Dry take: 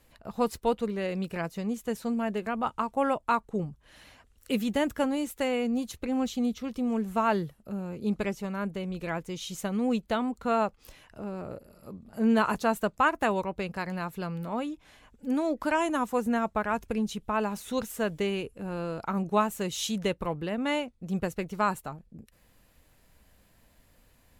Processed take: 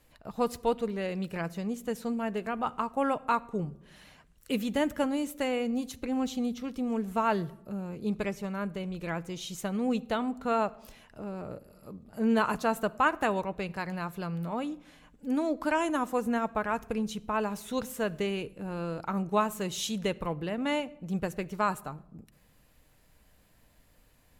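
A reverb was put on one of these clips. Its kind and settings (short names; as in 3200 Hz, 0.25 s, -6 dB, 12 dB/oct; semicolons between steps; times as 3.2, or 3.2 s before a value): shoebox room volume 3100 m³, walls furnished, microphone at 0.45 m; gain -1.5 dB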